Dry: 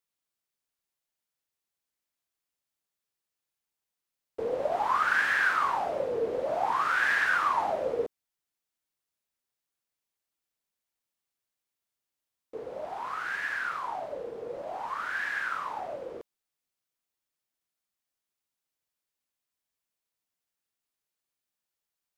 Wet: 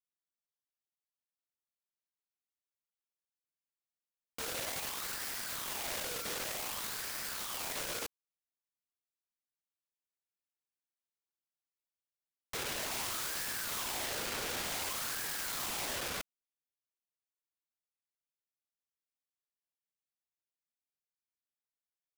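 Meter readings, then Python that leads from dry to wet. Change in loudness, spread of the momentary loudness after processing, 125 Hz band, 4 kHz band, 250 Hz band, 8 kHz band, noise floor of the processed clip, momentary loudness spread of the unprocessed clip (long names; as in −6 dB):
−7.0 dB, 4 LU, +1.0 dB, +6.0 dB, −4.0 dB, +15.0 dB, below −85 dBFS, 14 LU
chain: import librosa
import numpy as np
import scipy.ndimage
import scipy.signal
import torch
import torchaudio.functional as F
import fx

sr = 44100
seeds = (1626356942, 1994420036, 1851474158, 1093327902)

y = fx.leveller(x, sr, passes=5)
y = (np.mod(10.0 ** (28.0 / 20.0) * y + 1.0, 2.0) - 1.0) / 10.0 ** (28.0 / 20.0)
y = y * 10.0 ** (-5.0 / 20.0)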